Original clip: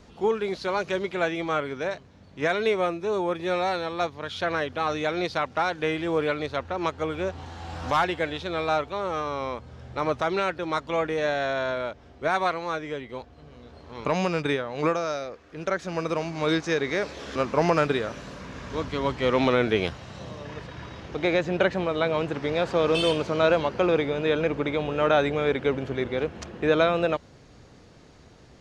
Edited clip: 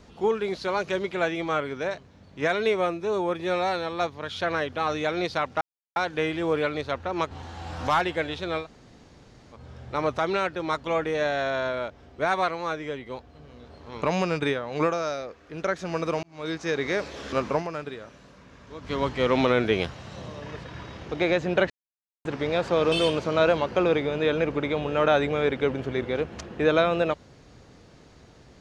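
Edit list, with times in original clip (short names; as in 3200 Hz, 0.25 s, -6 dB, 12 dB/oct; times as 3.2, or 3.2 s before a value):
5.61 insert silence 0.35 s
6.96–7.34 cut
8.65–9.59 room tone, crossfade 0.10 s
16.26–16.87 fade in
17.54–18.96 dip -11.5 dB, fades 0.12 s
21.73–22.28 mute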